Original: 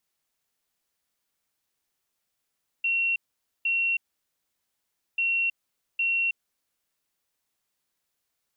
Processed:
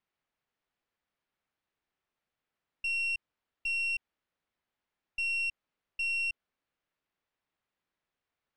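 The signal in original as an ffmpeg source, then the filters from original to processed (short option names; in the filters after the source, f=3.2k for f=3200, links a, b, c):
-f lavfi -i "aevalsrc='0.0794*sin(2*PI*2730*t)*clip(min(mod(mod(t,2.34),0.81),0.32-mod(mod(t,2.34),0.81))/0.005,0,1)*lt(mod(t,2.34),1.62)':d=4.68:s=44100"
-af "lowpass=2.6k,aeval=exprs='(tanh(22.4*val(0)+0.4)-tanh(0.4))/22.4':c=same"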